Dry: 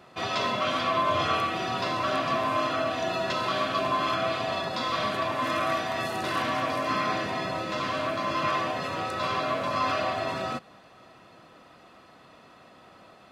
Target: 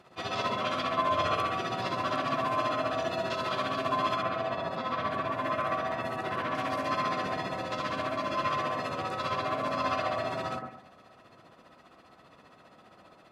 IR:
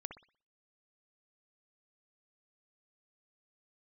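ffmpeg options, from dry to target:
-filter_complex "[0:a]asettb=1/sr,asplit=3[link_01][link_02][link_03];[link_01]atrim=end=4.224[link_04];[link_02]atrim=start=4.22:end=6.55,asetpts=PTS-STARTPTS,afade=type=in:duration=0.004:curve=qsin,afade=type=out:start_time=2.326:duration=0.004:curve=qsin,acrossover=split=2800[link_05][link_06];[link_06]acompressor=threshold=-49dB:ratio=4:attack=1:release=60[link_07];[link_05][link_07]amix=inputs=2:normalize=0[link_08];[link_03]atrim=start=6.546[link_09];[link_04][link_08]acrossfade=duration=0.004:curve1=hsin:curve2=qsin[link_10];[link_10][link_09]acrossfade=duration=0.004:curve1=qsin:curve2=hsin,tremolo=f=15:d=0.68[link_11];[1:a]atrim=start_sample=2205,asetrate=25578,aresample=44100[link_12];[link_11][link_12]afir=irnorm=-1:irlink=0"

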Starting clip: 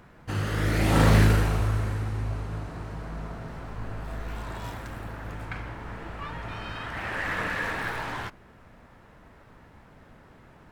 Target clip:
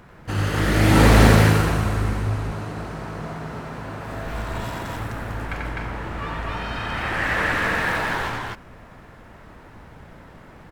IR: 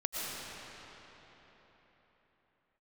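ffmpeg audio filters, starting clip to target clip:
-filter_complex "[0:a]asettb=1/sr,asplit=3[link_01][link_02][link_03];[link_01]atrim=end=2.264[link_04];[link_02]atrim=start=2.26:end=4.26,asetpts=PTS-STARTPTS,afade=type=in:duration=0.004:curve=qsin,afade=type=out:start_time=1.996:duration=0.004:curve=qsin,highpass=frequency=120:poles=1[link_05];[link_03]atrim=start=4.256[link_06];[link_04][link_05]acrossfade=duration=0.004:curve1=hsin:curve2=qsin[link_07];[link_07][link_06]acrossfade=duration=0.004:curve1=qsin:curve2=hsin,aecho=1:1:90.38|253.6:0.708|0.891,volume=4.5dB"

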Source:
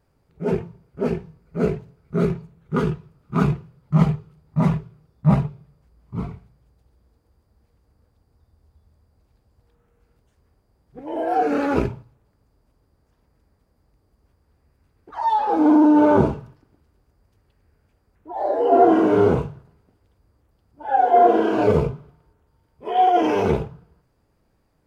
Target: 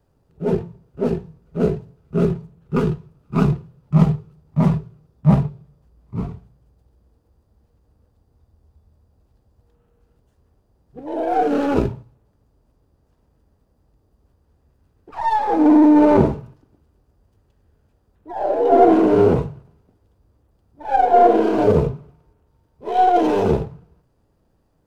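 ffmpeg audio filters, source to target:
ffmpeg -i in.wav -filter_complex "[0:a]bandreject=frequency=2200:width=6.8,acrossover=split=190|980[link_01][link_02][link_03];[link_03]aeval=exprs='max(val(0),0)':channel_layout=same[link_04];[link_01][link_02][link_04]amix=inputs=3:normalize=0,volume=2.5dB" out.wav

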